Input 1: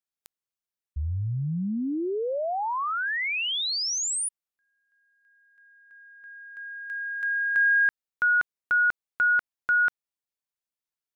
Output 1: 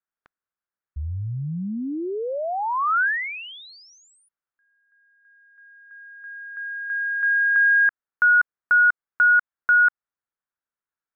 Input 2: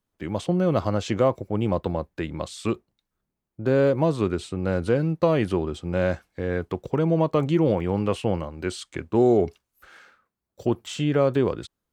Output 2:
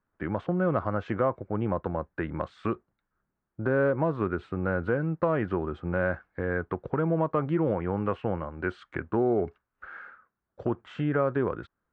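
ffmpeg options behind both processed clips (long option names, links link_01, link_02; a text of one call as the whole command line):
ffmpeg -i in.wav -af "acompressor=threshold=-24dB:ratio=2:attack=1.9:release=980:knee=1:detection=peak,lowpass=frequency=1500:width_type=q:width=2.7" out.wav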